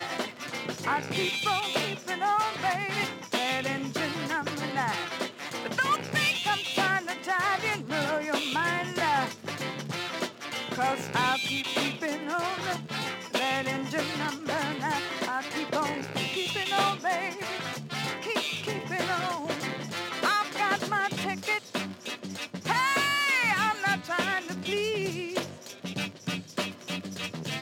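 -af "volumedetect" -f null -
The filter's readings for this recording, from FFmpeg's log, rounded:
mean_volume: -30.1 dB
max_volume: -13.3 dB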